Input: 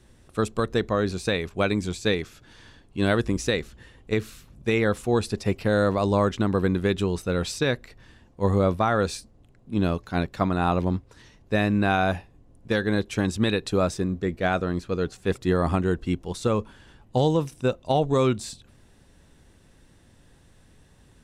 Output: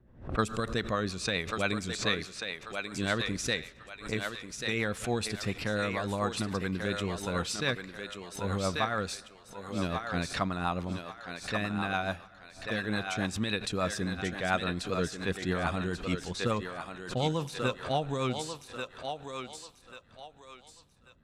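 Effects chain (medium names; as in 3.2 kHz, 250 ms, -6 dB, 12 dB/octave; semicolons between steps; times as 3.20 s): rotary cabinet horn 7 Hz; level-controlled noise filter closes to 740 Hz, open at -24.5 dBFS; peaking EQ 390 Hz -9 dB 1.4 oct; gain riding within 5 dB 0.5 s; bass shelf 140 Hz -10.5 dB; thinning echo 1139 ms, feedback 34%, high-pass 500 Hz, level -4.5 dB; on a send at -23.5 dB: reverberation RT60 2.0 s, pre-delay 79 ms; on the sum: swell ahead of each attack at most 130 dB/s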